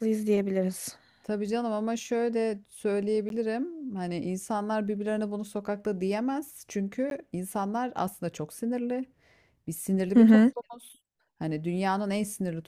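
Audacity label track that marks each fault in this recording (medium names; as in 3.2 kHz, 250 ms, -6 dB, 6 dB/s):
3.290000	3.300000	dropout 12 ms
7.100000	7.110000	dropout 12 ms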